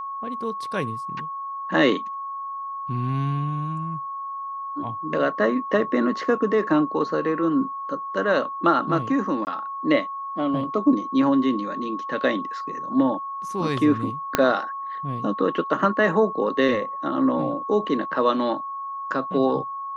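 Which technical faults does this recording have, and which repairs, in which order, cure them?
whistle 1,100 Hz −29 dBFS
0:09.45–0:09.47: drop-out 19 ms
0:14.35: click −3 dBFS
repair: click removal
notch filter 1,100 Hz, Q 30
repair the gap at 0:09.45, 19 ms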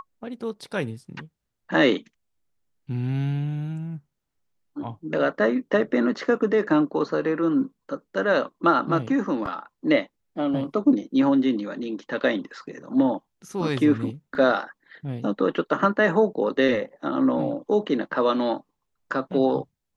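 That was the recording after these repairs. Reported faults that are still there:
0:14.35: click

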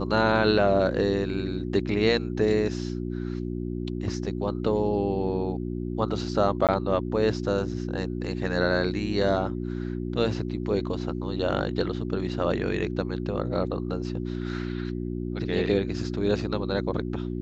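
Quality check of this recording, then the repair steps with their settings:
mains hum 60 Hz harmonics 6 −31 dBFS
0:06.67–0:06.69: drop-out 17 ms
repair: hum removal 60 Hz, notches 6
repair the gap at 0:06.67, 17 ms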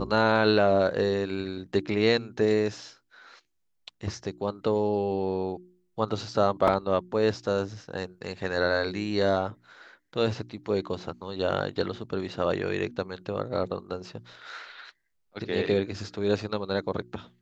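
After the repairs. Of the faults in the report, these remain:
none of them is left

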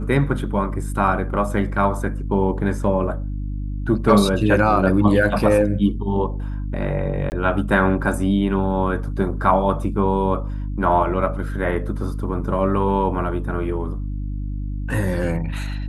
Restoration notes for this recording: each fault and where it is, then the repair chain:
mains hum 50 Hz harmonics 6 −26 dBFS
0:07.30–0:07.32: drop-out 19 ms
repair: hum removal 50 Hz, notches 6
repair the gap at 0:07.30, 19 ms

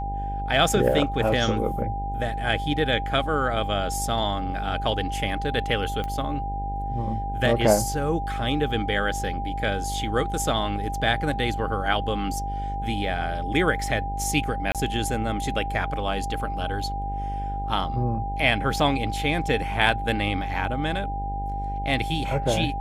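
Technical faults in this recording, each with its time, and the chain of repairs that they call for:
mains buzz 50 Hz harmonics 20 −31 dBFS
whistle 800 Hz −30 dBFS
0:06.04: click −18 dBFS
0:14.72–0:14.75: drop-out 27 ms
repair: click removal
hum removal 50 Hz, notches 20
notch filter 800 Hz, Q 30
repair the gap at 0:14.72, 27 ms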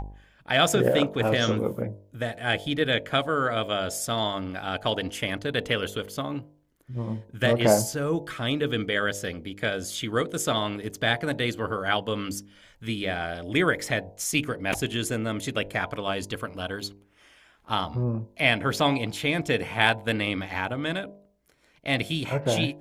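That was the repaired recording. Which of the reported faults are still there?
none of them is left

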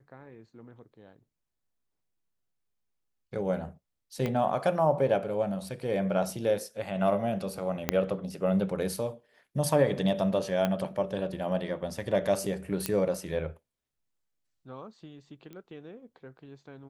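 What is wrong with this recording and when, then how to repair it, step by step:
0:04.26: click −18 dBFS
0:07.89: click −9 dBFS
0:10.65: click −15 dBFS
0:12.86: click −12 dBFS
0:15.53: click −32 dBFS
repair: click removal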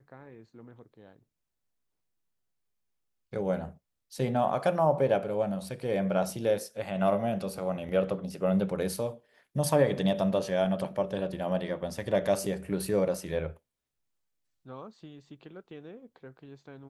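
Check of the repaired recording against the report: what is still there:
0:04.26: click
0:07.89: click
0:12.86: click

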